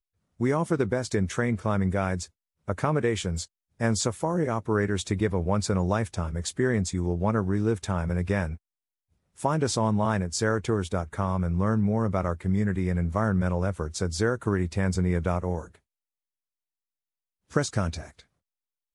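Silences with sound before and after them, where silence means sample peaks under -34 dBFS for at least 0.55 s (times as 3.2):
8.55–9.4
15.64–17.54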